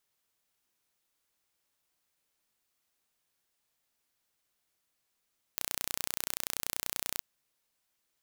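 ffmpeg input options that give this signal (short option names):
-f lavfi -i "aevalsrc='0.531*eq(mod(n,1451),0)':d=1.62:s=44100"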